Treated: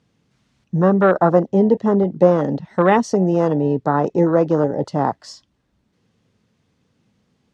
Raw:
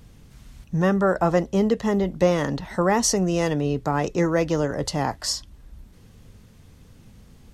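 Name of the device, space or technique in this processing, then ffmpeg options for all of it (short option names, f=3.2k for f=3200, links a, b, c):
over-cleaned archive recording: -af "highpass=150,lowpass=6.1k,afwtdn=0.0501,volume=6.5dB"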